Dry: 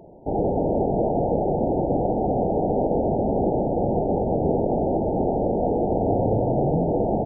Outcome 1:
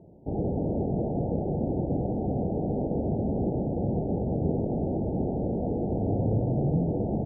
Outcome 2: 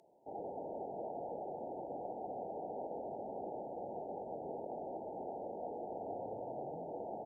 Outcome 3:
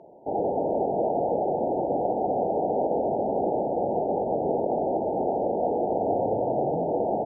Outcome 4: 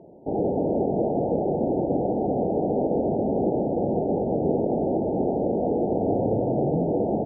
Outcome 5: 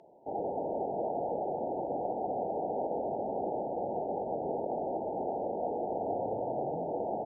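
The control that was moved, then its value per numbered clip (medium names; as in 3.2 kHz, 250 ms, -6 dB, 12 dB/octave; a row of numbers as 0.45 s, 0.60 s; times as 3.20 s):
band-pass filter, frequency: 110 Hz, 7.7 kHz, 930 Hz, 310 Hz, 2.8 kHz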